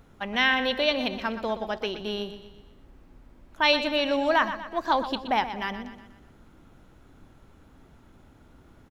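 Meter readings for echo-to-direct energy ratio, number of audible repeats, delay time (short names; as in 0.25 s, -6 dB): -10.5 dB, 4, 0.122 s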